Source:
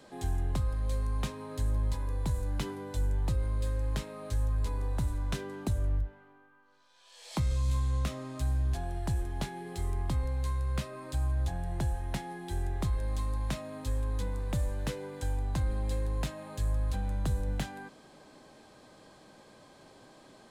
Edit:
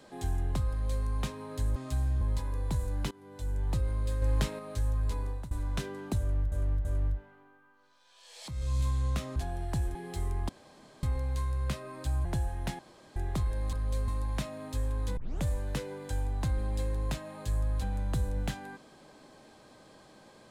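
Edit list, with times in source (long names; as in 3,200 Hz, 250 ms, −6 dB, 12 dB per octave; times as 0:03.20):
0:00.70–0:01.05: duplicate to 0:13.20
0:02.66–0:03.27: fade in, from −22.5 dB
0:03.77–0:04.14: clip gain +4.5 dB
0:04.68–0:05.06: fade out equal-power, to −21.5 dB
0:05.74–0:06.07: repeat, 3 plays
0:07.37–0:07.63: fade in, from −14.5 dB
0:08.25–0:08.70: move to 0:01.76
0:09.29–0:09.57: remove
0:10.11: splice in room tone 0.54 s
0:11.33–0:11.72: remove
0:12.26–0:12.63: fill with room tone
0:14.29: tape start 0.26 s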